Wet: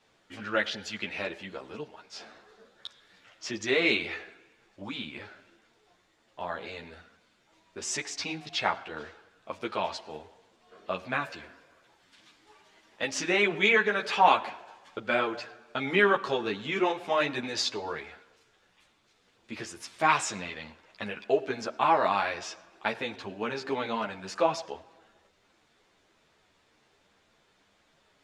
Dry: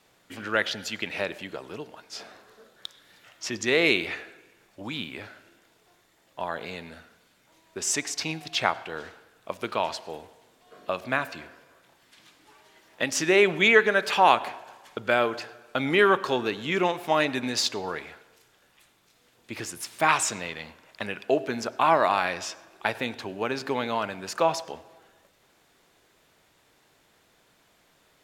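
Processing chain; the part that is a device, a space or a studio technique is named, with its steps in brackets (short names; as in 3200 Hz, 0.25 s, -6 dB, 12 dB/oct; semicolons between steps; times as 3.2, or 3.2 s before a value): 11.25–13.07 high shelf 8200 Hz +5.5 dB; string-machine ensemble chorus (ensemble effect; LPF 6500 Hz 12 dB/oct)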